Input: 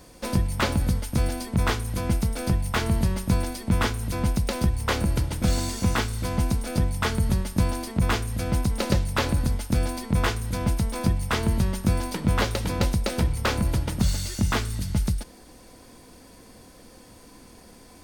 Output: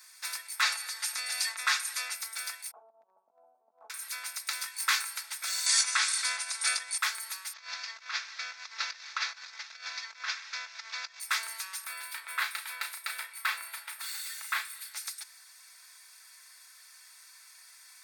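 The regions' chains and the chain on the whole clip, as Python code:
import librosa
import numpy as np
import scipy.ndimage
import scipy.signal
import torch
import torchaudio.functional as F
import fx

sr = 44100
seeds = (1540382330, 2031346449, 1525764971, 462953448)

y = fx.chain(x, sr, fx.lowpass(hz=9600.0, slope=12),
    fx.comb(ms=5.6, depth=0.53),
    fx.env_flatten(amount_pct=50), at=(0.61, 2.15))
y = fx.chain(y, sr, fx.ellip_lowpass(hz=730.0, order=4, stop_db=60),
    fx.over_compress(threshold_db=-24.0, ratio=-0.5), at=(2.71, 3.9))
y = fx.chain(y, sr, fx.peak_eq(hz=670.0, db=-13.0, octaves=0.25),
    fx.doubler(ms=21.0, db=-7.5),
    fx.env_flatten(amount_pct=50), at=(4.62, 5.15))
y = fx.chain(y, sr, fx.ellip_lowpass(hz=10000.0, order=4, stop_db=40),
    fx.peak_eq(hz=83.0, db=-12.0, octaves=0.51),
    fx.env_flatten(amount_pct=100), at=(5.66, 6.98))
y = fx.chain(y, sr, fx.cvsd(bps=32000),
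    fx.over_compress(threshold_db=-25.0, ratio=-0.5), at=(7.53, 11.2))
y = fx.chain(y, sr, fx.highpass(hz=370.0, slope=6),
    fx.peak_eq(hz=6000.0, db=-13.5, octaves=0.92),
    fx.doubler(ms=34.0, db=-7.5), at=(11.84, 14.94))
y = scipy.signal.sosfilt(scipy.signal.butter(4, 1400.0, 'highpass', fs=sr, output='sos'), y)
y = fx.peak_eq(y, sr, hz=3000.0, db=-12.5, octaves=0.21)
y = y + 0.41 * np.pad(y, (int(4.5 * sr / 1000.0), 0))[:len(y)]
y = y * librosa.db_to_amplitude(1.0)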